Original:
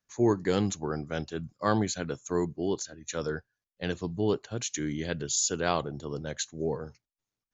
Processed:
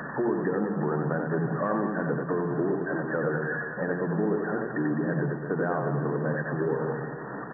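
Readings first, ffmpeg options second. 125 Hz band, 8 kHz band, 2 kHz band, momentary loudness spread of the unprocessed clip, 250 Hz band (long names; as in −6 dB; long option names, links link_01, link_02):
+4.5 dB, can't be measured, +7.0 dB, 10 LU, +3.5 dB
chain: -filter_complex "[0:a]aeval=exprs='val(0)+0.5*0.0282*sgn(val(0))':channel_layout=same,afftfilt=real='re*between(b*sr/4096,120,1900)':imag='im*between(b*sr/4096,120,1900)':win_size=4096:overlap=0.75,asplit=2[link_01][link_02];[link_02]alimiter=limit=-20.5dB:level=0:latency=1:release=14,volume=1dB[link_03];[link_01][link_03]amix=inputs=2:normalize=0,acompressor=threshold=-26dB:ratio=4,bandreject=frequency=60:width_type=h:width=6,bandreject=frequency=120:width_type=h:width=6,bandreject=frequency=180:width_type=h:width=6,bandreject=frequency=240:width_type=h:width=6,aeval=exprs='val(0)+0.00141*(sin(2*PI*60*n/s)+sin(2*PI*2*60*n/s)/2+sin(2*PI*3*60*n/s)/3+sin(2*PI*4*60*n/s)/4+sin(2*PI*5*60*n/s)/5)':channel_layout=same,aecho=1:1:90|207|359.1|556.8|813.9:0.631|0.398|0.251|0.158|0.1"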